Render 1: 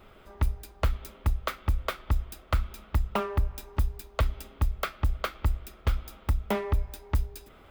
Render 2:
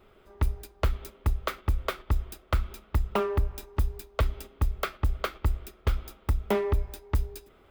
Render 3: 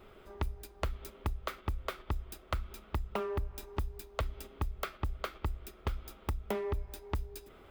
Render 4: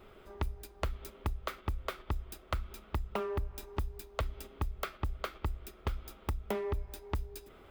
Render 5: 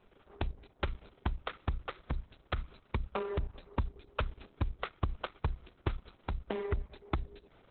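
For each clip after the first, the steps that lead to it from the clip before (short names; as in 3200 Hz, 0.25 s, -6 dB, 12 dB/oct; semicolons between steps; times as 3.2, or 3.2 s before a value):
gate -41 dBFS, range -6 dB; bell 390 Hz +6.5 dB 0.44 oct
compressor 3:1, threshold -38 dBFS, peak gain reduction 13.5 dB; gain +2.5 dB
nothing audible
G.711 law mismatch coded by A; gain +2.5 dB; Opus 6 kbps 48000 Hz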